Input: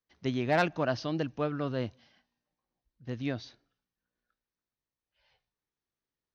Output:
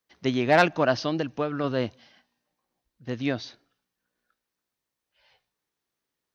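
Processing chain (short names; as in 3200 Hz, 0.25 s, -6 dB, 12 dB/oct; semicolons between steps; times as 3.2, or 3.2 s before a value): low shelf 120 Hz -11.5 dB; 1.08–1.64 compressor, threshold -31 dBFS, peak gain reduction 5.5 dB; gain +8 dB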